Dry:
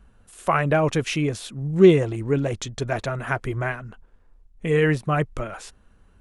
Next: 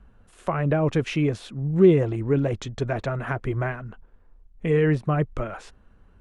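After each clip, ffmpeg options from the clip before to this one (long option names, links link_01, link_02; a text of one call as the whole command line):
ffmpeg -i in.wav -filter_complex "[0:a]aemphasis=mode=reproduction:type=75kf,asplit=2[link_01][link_02];[link_02]alimiter=limit=-14dB:level=0:latency=1,volume=-3dB[link_03];[link_01][link_03]amix=inputs=2:normalize=0,acrossover=split=500[link_04][link_05];[link_05]acompressor=threshold=-23dB:ratio=6[link_06];[link_04][link_06]amix=inputs=2:normalize=0,volume=-3.5dB" out.wav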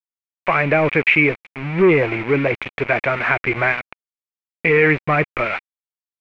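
ffmpeg -i in.wav -filter_complex "[0:a]asplit=2[link_01][link_02];[link_02]highpass=frequency=720:poles=1,volume=18dB,asoftclip=type=tanh:threshold=-5.5dB[link_03];[link_01][link_03]amix=inputs=2:normalize=0,lowpass=frequency=1800:poles=1,volume=-6dB,aeval=exprs='val(0)*gte(abs(val(0)),0.0447)':channel_layout=same,lowpass=frequency=2300:width_type=q:width=8.1" out.wav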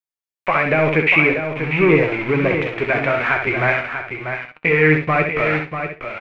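ffmpeg -i in.wav -filter_complex "[0:a]asplit=2[link_01][link_02];[link_02]aecho=0:1:65|130|195:0.501|0.0852|0.0145[link_03];[link_01][link_03]amix=inputs=2:normalize=0,flanger=delay=6.4:depth=6.3:regen=59:speed=0.5:shape=sinusoidal,asplit=2[link_04][link_05];[link_05]aecho=0:1:641:0.398[link_06];[link_04][link_06]amix=inputs=2:normalize=0,volume=3.5dB" out.wav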